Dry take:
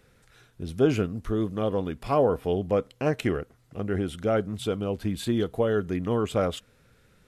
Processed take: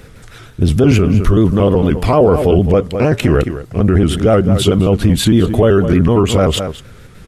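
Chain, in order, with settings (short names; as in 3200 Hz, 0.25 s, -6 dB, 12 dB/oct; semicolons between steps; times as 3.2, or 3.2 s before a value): trilling pitch shifter -1.5 st, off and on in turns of 76 ms; low shelf 190 Hz +6.5 dB; echo 0.211 s -16 dB; maximiser +20 dB; gain -1 dB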